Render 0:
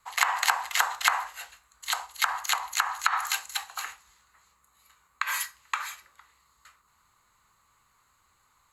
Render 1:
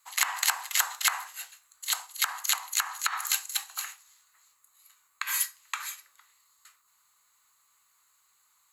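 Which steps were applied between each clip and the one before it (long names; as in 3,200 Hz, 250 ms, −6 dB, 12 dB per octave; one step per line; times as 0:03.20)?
spectral tilt +4 dB per octave
level −7.5 dB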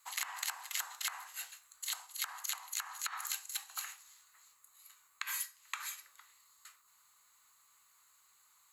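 downward compressor 3 to 1, threshold −39 dBFS, peak gain reduction 15 dB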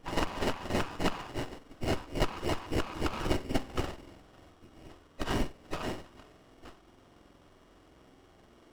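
hearing-aid frequency compression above 1,800 Hz 4 to 1
windowed peak hold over 17 samples
level +8 dB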